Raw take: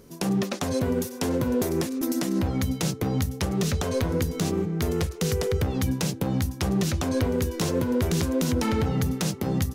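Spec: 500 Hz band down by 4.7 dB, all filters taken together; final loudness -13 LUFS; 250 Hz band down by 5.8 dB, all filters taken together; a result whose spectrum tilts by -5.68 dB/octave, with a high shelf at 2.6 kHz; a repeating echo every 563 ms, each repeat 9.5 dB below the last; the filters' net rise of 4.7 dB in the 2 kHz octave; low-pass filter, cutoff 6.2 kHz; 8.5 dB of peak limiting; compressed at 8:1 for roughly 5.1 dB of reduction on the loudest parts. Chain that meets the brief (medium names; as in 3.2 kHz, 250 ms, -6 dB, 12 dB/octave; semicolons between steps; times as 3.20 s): low-pass 6.2 kHz; peaking EQ 250 Hz -7 dB; peaking EQ 500 Hz -3.5 dB; peaking EQ 2 kHz +8.5 dB; treble shelf 2.6 kHz -5.5 dB; compression 8:1, threshold -27 dBFS; peak limiter -23 dBFS; feedback delay 563 ms, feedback 33%, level -9.5 dB; trim +20 dB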